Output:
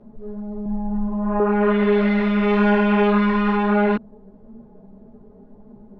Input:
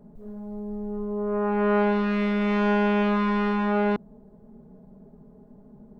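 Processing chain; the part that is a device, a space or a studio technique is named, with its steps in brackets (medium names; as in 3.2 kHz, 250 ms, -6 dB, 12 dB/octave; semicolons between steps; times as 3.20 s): 1.73–2.27 s: spectral replace 540–3600 Hz after; peaking EQ 170 Hz -6.5 dB 0.4 oct; string-machine ensemble chorus (three-phase chorus; low-pass 4.1 kHz 12 dB/octave); 0.65–1.40 s: comb 6 ms, depth 91%; trim +8 dB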